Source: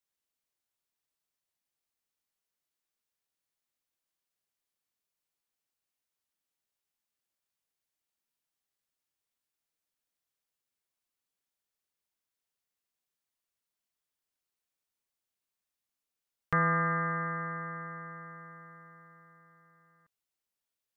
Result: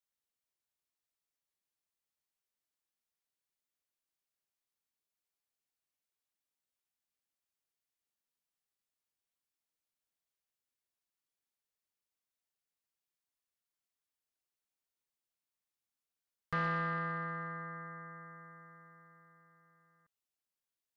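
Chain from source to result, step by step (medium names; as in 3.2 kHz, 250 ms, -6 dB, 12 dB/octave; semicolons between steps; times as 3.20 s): saturation -21.5 dBFS, distortion -18 dB; trim -5 dB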